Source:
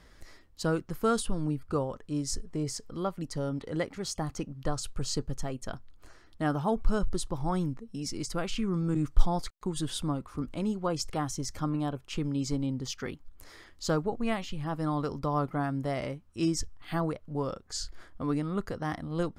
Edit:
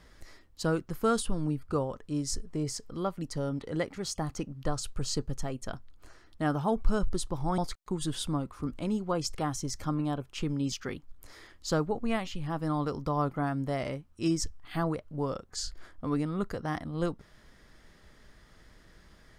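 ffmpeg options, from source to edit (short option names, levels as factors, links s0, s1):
-filter_complex "[0:a]asplit=3[s0][s1][s2];[s0]atrim=end=7.582[s3];[s1]atrim=start=9.328:end=12.472[s4];[s2]atrim=start=12.888[s5];[s3][s4]acrossfade=d=0.004:c1=hsin:c2=hsin[s6];[s6][s5]acrossfade=d=0.004:c1=hsin:c2=hsin"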